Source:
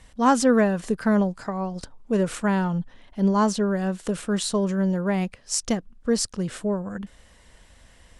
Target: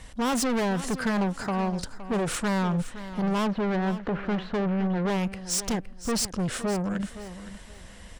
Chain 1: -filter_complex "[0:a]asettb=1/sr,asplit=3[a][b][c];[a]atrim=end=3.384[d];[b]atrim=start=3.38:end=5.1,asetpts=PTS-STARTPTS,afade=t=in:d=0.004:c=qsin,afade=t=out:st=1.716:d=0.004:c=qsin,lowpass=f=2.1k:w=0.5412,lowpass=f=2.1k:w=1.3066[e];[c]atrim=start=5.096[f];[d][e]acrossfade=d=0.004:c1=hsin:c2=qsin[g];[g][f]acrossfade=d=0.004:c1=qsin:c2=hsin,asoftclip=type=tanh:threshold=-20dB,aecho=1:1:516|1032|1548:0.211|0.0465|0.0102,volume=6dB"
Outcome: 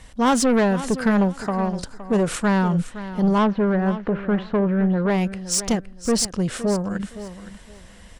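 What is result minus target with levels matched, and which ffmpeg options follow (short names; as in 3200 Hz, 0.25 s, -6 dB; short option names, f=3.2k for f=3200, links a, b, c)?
soft clip: distortion -6 dB
-filter_complex "[0:a]asettb=1/sr,asplit=3[a][b][c];[a]atrim=end=3.384[d];[b]atrim=start=3.38:end=5.1,asetpts=PTS-STARTPTS,afade=t=in:d=0.004:c=qsin,afade=t=out:st=1.716:d=0.004:c=qsin,lowpass=f=2.1k:w=0.5412,lowpass=f=2.1k:w=1.3066[e];[c]atrim=start=5.096[f];[d][e]acrossfade=d=0.004:c1=hsin:c2=qsin[g];[g][f]acrossfade=d=0.004:c1=qsin:c2=hsin,asoftclip=type=tanh:threshold=-30dB,aecho=1:1:516|1032|1548:0.211|0.0465|0.0102,volume=6dB"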